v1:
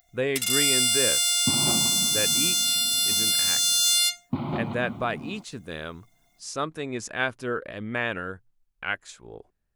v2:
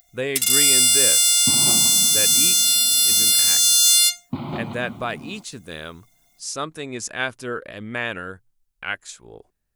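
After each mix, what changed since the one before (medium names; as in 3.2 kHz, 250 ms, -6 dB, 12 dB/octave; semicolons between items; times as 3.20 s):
master: add treble shelf 4.2 kHz +10 dB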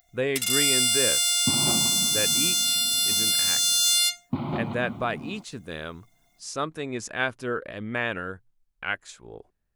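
master: add treble shelf 4.2 kHz -10 dB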